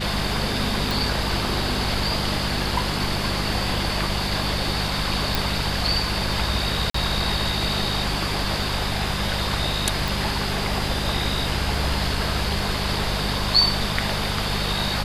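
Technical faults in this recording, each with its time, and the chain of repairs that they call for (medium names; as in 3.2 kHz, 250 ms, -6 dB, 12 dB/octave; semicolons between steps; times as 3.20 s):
hum 50 Hz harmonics 4 -29 dBFS
0.91 s: pop
5.35 s: pop
6.90–6.94 s: dropout 44 ms
10.08 s: pop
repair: de-click; de-hum 50 Hz, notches 4; interpolate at 6.90 s, 44 ms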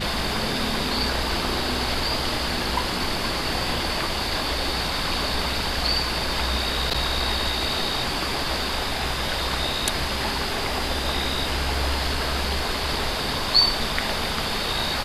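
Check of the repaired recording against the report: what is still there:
nothing left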